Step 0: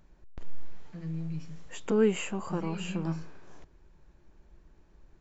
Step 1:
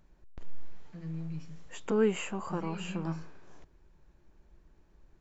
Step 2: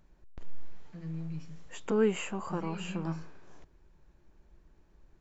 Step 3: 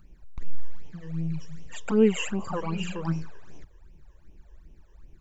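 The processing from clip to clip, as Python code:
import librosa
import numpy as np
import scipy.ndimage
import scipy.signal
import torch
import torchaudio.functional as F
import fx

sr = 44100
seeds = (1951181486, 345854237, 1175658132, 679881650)

y1 = fx.dynamic_eq(x, sr, hz=1100.0, q=0.82, threshold_db=-50.0, ratio=4.0, max_db=4)
y1 = y1 * 10.0 ** (-3.0 / 20.0)
y2 = y1
y3 = fx.phaser_stages(y2, sr, stages=12, low_hz=220.0, high_hz=1500.0, hz=2.6, feedback_pct=45)
y3 = y3 * 10.0 ** (7.5 / 20.0)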